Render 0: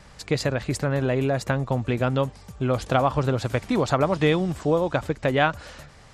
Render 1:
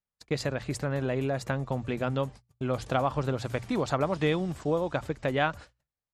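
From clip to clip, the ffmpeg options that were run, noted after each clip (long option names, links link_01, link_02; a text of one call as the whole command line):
ffmpeg -i in.wav -af "agate=range=-42dB:threshold=-36dB:ratio=16:detection=peak,bandreject=frequency=60:width_type=h:width=6,bandreject=frequency=120:width_type=h:width=6,volume=-6dB" out.wav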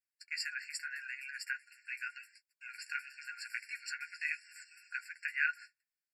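ffmpeg -i in.wav -af "flanger=delay=9.1:depth=4:regen=-27:speed=0.82:shape=sinusoidal,afftfilt=real='re*eq(mod(floor(b*sr/1024/1400),2),1)':imag='im*eq(mod(floor(b*sr/1024/1400),2),1)':win_size=1024:overlap=0.75,volume=4.5dB" out.wav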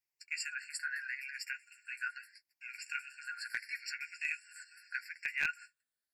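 ffmpeg -i in.wav -af "afftfilt=real='re*pow(10,9/40*sin(2*PI*(0.74*log(max(b,1)*sr/1024/100)/log(2)-(0.78)*(pts-256)/sr)))':imag='im*pow(10,9/40*sin(2*PI*(0.74*log(max(b,1)*sr/1024/100)/log(2)-(0.78)*(pts-256)/sr)))':win_size=1024:overlap=0.75,aeval=exprs='clip(val(0),-1,0.0562)':channel_layout=same" out.wav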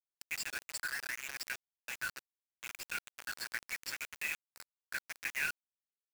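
ffmpeg -i in.wav -filter_complex "[0:a]asplit=2[link_01][link_02];[link_02]acompressor=threshold=-47dB:ratio=6,volume=1.5dB[link_03];[link_01][link_03]amix=inputs=2:normalize=0,acrusher=bits=5:mix=0:aa=0.000001,volume=-3.5dB" out.wav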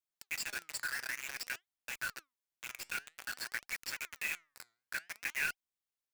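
ffmpeg -i in.wav -af "flanger=delay=0.1:depth=8.8:regen=88:speed=0.53:shape=triangular,volume=5dB" out.wav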